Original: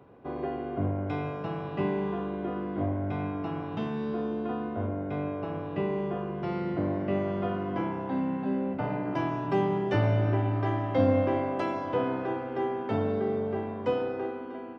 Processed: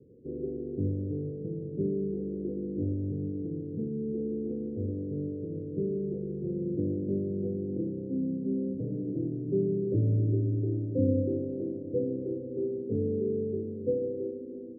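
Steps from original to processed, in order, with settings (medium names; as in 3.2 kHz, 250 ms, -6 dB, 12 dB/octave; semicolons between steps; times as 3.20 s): Chebyshev low-pass 500 Hz, order 6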